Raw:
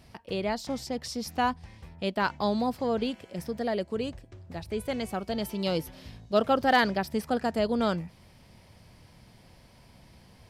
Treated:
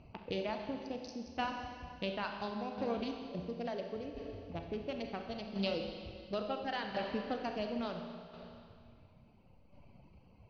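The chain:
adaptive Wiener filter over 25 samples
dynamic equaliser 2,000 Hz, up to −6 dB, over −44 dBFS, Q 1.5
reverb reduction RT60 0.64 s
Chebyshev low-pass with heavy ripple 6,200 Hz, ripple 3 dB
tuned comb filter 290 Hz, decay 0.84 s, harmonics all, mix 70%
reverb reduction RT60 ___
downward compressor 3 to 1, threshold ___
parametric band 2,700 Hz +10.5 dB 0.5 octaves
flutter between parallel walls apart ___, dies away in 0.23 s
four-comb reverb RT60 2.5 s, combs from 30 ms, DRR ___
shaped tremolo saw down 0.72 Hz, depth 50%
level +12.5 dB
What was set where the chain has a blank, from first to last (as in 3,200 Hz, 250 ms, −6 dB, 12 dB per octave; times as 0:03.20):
1.7 s, −48 dBFS, 11.3 metres, 3 dB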